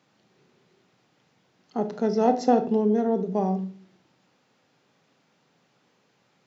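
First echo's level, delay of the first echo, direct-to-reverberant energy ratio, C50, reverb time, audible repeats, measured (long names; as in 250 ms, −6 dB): no echo audible, no echo audible, 8.0 dB, 13.0 dB, 0.45 s, no echo audible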